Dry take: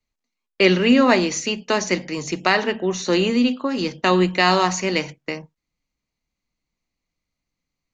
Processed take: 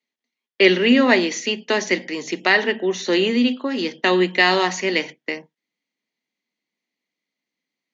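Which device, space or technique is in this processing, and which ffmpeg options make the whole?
television speaker: -af "highpass=frequency=210:width=0.5412,highpass=frequency=210:width=1.3066,equalizer=frequency=230:width_type=q:width=4:gain=3,equalizer=frequency=400:width_type=q:width=4:gain=4,equalizer=frequency=1200:width_type=q:width=4:gain=-5,equalizer=frequency=1900:width_type=q:width=4:gain=8,equalizer=frequency=3300:width_type=q:width=4:gain=7,lowpass=frequency=6700:width=0.5412,lowpass=frequency=6700:width=1.3066,volume=-1.5dB"

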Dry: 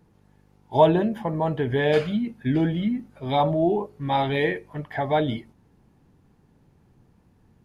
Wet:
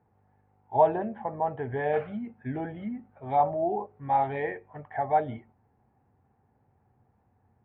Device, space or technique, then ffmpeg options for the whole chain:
bass cabinet: -af "highpass=70,equalizer=frequency=96:width_type=q:width=4:gain=4,equalizer=frequency=170:width_type=q:width=4:gain=-10,equalizer=frequency=310:width_type=q:width=4:gain=-7,equalizer=frequency=770:width_type=q:width=4:gain=10,lowpass=frequency=2100:width=0.5412,lowpass=frequency=2100:width=1.3066,volume=-7dB"

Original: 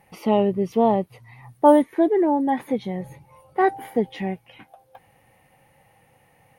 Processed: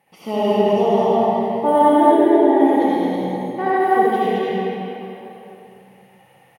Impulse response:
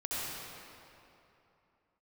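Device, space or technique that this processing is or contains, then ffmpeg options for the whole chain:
stadium PA: -filter_complex "[0:a]highpass=170,equalizer=frequency=3200:width_type=o:width=0.4:gain=5.5,aecho=1:1:215.7|259.5:0.794|0.282[link_01];[1:a]atrim=start_sample=2205[link_02];[link_01][link_02]afir=irnorm=-1:irlink=0,volume=-2dB"

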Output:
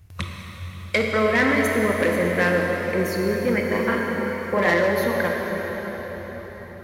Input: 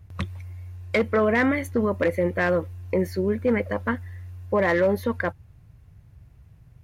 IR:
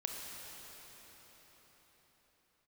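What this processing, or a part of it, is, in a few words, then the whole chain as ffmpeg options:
cathedral: -filter_complex "[1:a]atrim=start_sample=2205[link_01];[0:a][link_01]afir=irnorm=-1:irlink=0,asettb=1/sr,asplit=3[link_02][link_03][link_04];[link_02]atrim=end=3.704[link_05];[link_03]atrim=start=3.7:end=4.74,asetpts=PTS-STARTPTS,afade=type=in:duration=0.004:curve=qsin,afade=type=out:start_time=1.036:duration=0.004:curve=qsin,asplit=2[link_06][link_07];[link_07]adelay=40,volume=-3dB[link_08];[link_06][link_08]amix=inputs=2:normalize=0,atrim=end_sample=45864[link_09];[link_04]atrim=start=4.736[link_10];[link_05][link_09]acrossfade=duration=0.004:curve1=hsin:curve2=qsin[link_11];[link_11][link_10]acrossfade=duration=0.004:curve1=qsin:curve2=hsin,highshelf=frequency=2100:gain=10.5"

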